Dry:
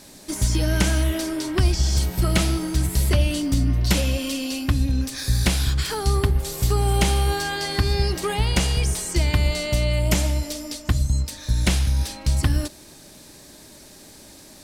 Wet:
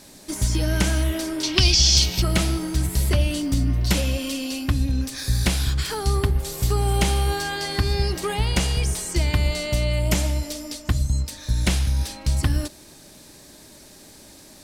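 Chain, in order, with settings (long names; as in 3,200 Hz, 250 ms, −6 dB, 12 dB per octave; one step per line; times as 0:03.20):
0:01.43–0:02.22: flat-topped bell 3,900 Hz +15 dB
0:02.72–0:04.25: bit-depth reduction 10 bits, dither none
level −1 dB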